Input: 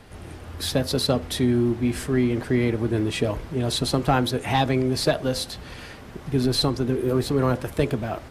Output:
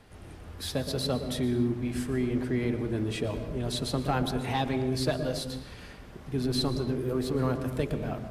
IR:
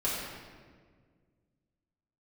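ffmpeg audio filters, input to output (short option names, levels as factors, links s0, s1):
-filter_complex "[0:a]asplit=2[s0][s1];[s1]lowshelf=f=380:g=11[s2];[1:a]atrim=start_sample=2205,afade=t=out:st=0.24:d=0.01,atrim=end_sample=11025,adelay=116[s3];[s2][s3]afir=irnorm=-1:irlink=0,volume=0.119[s4];[s0][s4]amix=inputs=2:normalize=0,volume=0.398"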